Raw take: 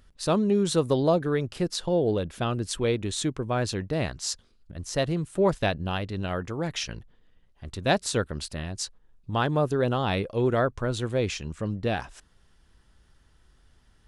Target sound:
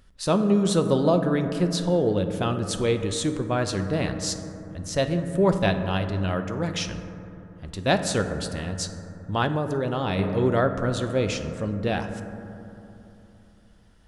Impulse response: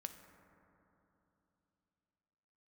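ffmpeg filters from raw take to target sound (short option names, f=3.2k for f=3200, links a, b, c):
-filter_complex "[1:a]atrim=start_sample=2205[a];[0:a][a]afir=irnorm=-1:irlink=0,asettb=1/sr,asplit=3[b][c][d];[b]atrim=end=9.464[e];[c]atrim=start=9.46:end=10.19,asetpts=PTS-STARTPTS,afade=t=in:d=0.004:c=qsin,afade=t=out:st=0.726:d=0.004:c=qsin,acompressor=threshold=-28dB:ratio=6[f];[d]atrim=start=10.186[g];[e][f]acrossfade=d=0.004:c1=hsin:c2=qsin[h];[h][g]acrossfade=d=0.004:c1=qsin:c2=hsin,volume=6dB"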